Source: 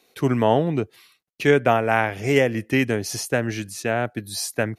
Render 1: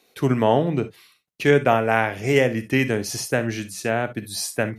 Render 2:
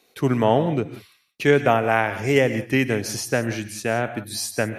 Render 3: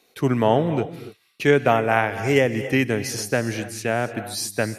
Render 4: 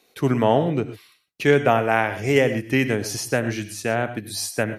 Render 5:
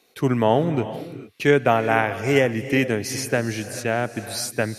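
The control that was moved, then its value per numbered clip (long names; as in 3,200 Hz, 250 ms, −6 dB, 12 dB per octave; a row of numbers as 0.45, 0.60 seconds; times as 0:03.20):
reverb whose tail is shaped and stops, gate: 80, 200, 310, 140, 470 milliseconds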